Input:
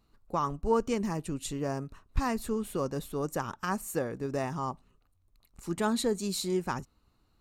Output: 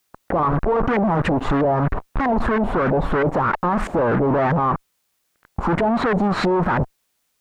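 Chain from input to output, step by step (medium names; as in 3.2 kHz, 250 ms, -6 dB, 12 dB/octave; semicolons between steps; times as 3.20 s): fuzz box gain 51 dB, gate -52 dBFS; LFO low-pass saw up 3.1 Hz 620–1800 Hz; word length cut 12-bit, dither triangular; peak limiter -14.5 dBFS, peak gain reduction 10.5 dB; trim +2 dB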